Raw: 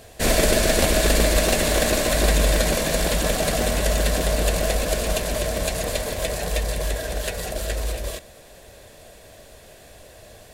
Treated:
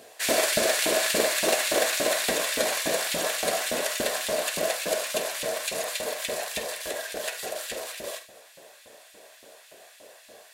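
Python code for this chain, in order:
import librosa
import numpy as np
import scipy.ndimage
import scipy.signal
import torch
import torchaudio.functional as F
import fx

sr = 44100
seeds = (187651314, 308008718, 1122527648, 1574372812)

y = fx.filter_lfo_highpass(x, sr, shape='saw_up', hz=3.5, low_hz=230.0, high_hz=2700.0, q=1.1)
y = fx.room_early_taps(y, sr, ms=(48, 76), db=(-11.0, -15.0))
y = F.gain(torch.from_numpy(y), -3.0).numpy()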